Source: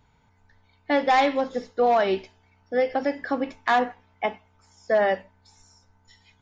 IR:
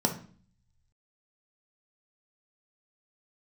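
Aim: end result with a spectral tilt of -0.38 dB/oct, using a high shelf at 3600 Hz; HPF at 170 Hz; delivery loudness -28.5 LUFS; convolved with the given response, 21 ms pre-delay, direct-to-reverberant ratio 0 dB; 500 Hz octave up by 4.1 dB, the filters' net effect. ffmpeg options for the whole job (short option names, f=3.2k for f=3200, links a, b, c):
-filter_complex "[0:a]highpass=170,equalizer=f=500:t=o:g=5,highshelf=f=3.6k:g=-3,asplit=2[a][b];[1:a]atrim=start_sample=2205,adelay=21[c];[b][c]afir=irnorm=-1:irlink=0,volume=-9.5dB[d];[a][d]amix=inputs=2:normalize=0,volume=-12.5dB"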